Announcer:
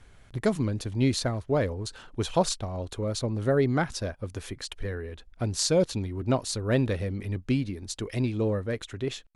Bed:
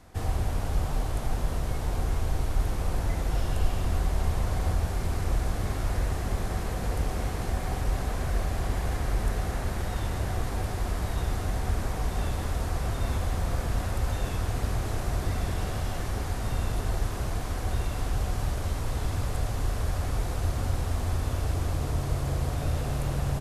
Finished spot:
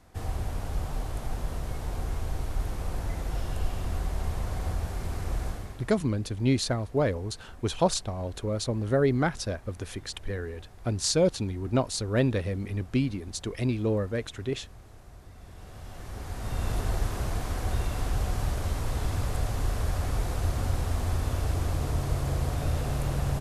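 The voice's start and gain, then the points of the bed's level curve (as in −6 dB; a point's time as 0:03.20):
5.45 s, 0.0 dB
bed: 0:05.48 −4 dB
0:05.97 −20.5 dB
0:15.32 −20.5 dB
0:16.71 0 dB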